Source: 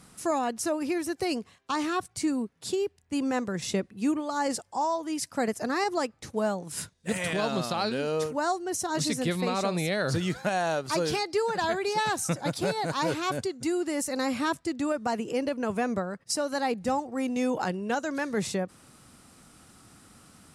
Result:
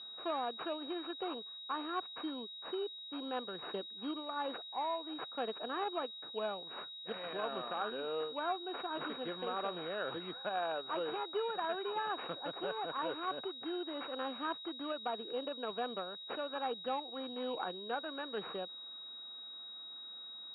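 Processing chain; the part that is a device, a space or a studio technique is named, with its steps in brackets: toy sound module (decimation joined by straight lines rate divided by 8×; class-D stage that switches slowly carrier 3.8 kHz; cabinet simulation 550–3500 Hz, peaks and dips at 600 Hz -5 dB, 890 Hz -5 dB, 2 kHz -9 dB, 2.9 kHz +3 dB); trim -3 dB

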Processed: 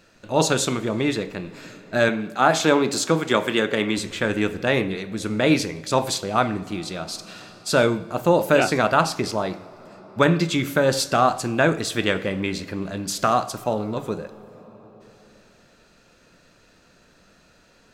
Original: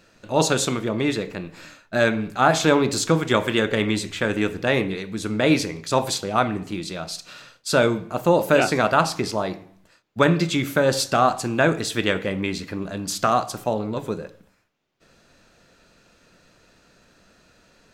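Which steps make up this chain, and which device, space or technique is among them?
compressed reverb return (on a send at -9 dB: reverberation RT60 2.8 s, pre-delay 75 ms + compression 10:1, threshold -31 dBFS, peak gain reduction 17.5 dB); 2.09–3.98 s: on the sum: high-pass 170 Hz 12 dB/octave

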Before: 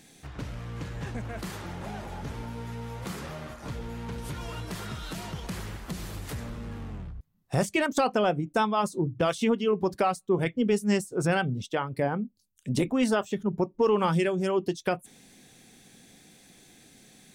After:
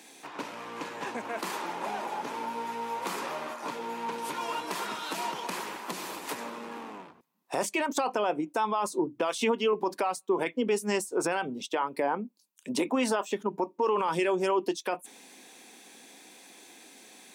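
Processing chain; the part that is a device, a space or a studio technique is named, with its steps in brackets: 6.37–7.10 s: high-pass 150 Hz; laptop speaker (high-pass 270 Hz 24 dB/octave; peaking EQ 960 Hz +10 dB 0.41 oct; peaking EQ 2.5 kHz +4.5 dB 0.21 oct; peak limiter -22 dBFS, peak gain reduction 12.5 dB); trim +3.5 dB

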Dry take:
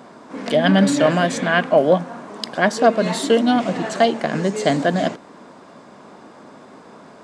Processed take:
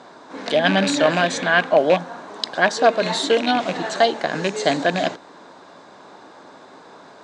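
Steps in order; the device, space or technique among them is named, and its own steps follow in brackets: car door speaker with a rattle (rattle on loud lows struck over -20 dBFS, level -15 dBFS; cabinet simulation 83–8700 Hz, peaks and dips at 140 Hz -6 dB, 220 Hz -9 dB, 850 Hz +4 dB, 1.6 kHz +4 dB, 3.9 kHz +9 dB, 6.2 kHz +3 dB); trim -1.5 dB

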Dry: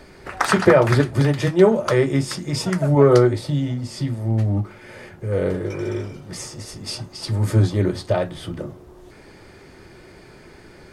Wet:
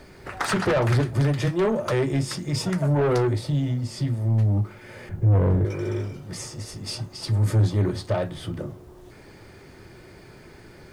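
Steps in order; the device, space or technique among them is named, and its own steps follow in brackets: 5.09–5.65 s: RIAA curve playback; open-reel tape (saturation -15.5 dBFS, distortion -9 dB; peaking EQ 110 Hz +4.5 dB 0.93 oct; white noise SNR 46 dB); trim -2.5 dB

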